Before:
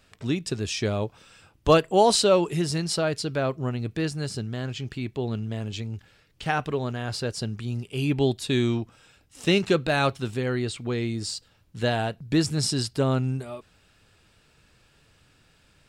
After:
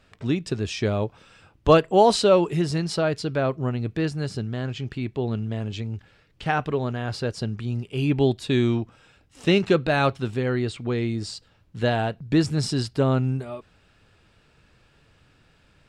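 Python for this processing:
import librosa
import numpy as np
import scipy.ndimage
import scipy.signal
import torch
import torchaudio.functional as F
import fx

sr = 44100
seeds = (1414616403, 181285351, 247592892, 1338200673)

y = fx.lowpass(x, sr, hz=2900.0, slope=6)
y = F.gain(torch.from_numpy(y), 2.5).numpy()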